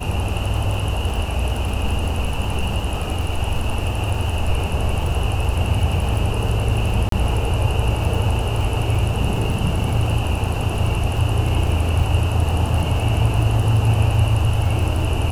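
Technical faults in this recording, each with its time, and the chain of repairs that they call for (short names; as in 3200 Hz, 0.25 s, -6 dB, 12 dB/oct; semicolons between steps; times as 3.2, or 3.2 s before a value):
crackle 42/s -26 dBFS
7.09–7.12 gap 33 ms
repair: de-click; interpolate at 7.09, 33 ms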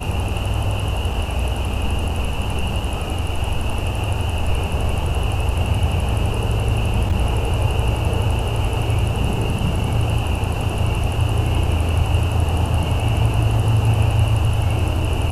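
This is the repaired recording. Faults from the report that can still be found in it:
none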